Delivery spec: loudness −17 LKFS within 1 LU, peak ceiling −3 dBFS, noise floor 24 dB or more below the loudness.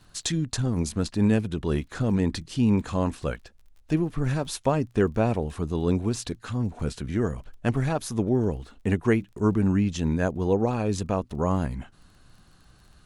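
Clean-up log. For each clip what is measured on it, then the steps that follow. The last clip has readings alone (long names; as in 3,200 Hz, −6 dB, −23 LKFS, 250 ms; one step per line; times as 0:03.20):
crackle rate 29 per second; integrated loudness −26.5 LKFS; sample peak −8.0 dBFS; target loudness −17.0 LKFS
→ click removal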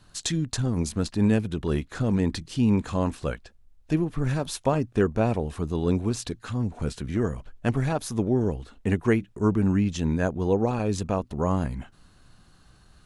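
crackle rate 0.15 per second; integrated loudness −26.5 LKFS; sample peak −8.0 dBFS; target loudness −17.0 LKFS
→ level +9.5 dB
brickwall limiter −3 dBFS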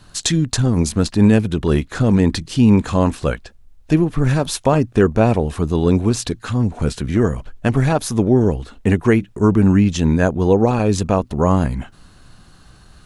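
integrated loudness −17.0 LKFS; sample peak −3.0 dBFS; background noise floor −47 dBFS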